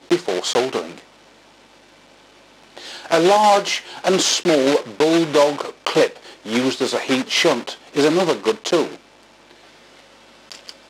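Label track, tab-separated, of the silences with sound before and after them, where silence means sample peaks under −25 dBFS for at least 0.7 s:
0.980000	2.780000	silence
8.940000	10.520000	silence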